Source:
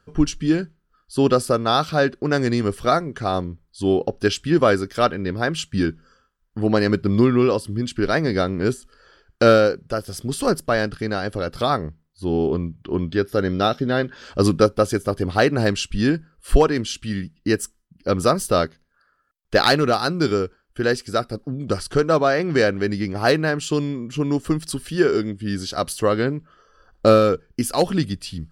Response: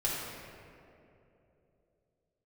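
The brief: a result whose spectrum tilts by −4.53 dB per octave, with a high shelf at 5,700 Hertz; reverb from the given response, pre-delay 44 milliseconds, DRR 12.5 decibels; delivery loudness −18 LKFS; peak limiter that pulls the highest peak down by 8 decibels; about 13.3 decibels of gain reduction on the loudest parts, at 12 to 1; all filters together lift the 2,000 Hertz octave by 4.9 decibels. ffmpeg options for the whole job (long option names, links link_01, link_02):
-filter_complex "[0:a]equalizer=frequency=2000:width_type=o:gain=6,highshelf=frequency=5700:gain=6.5,acompressor=threshold=-21dB:ratio=12,alimiter=limit=-17dB:level=0:latency=1,asplit=2[link_01][link_02];[1:a]atrim=start_sample=2205,adelay=44[link_03];[link_02][link_03]afir=irnorm=-1:irlink=0,volume=-19.5dB[link_04];[link_01][link_04]amix=inputs=2:normalize=0,volume=10.5dB"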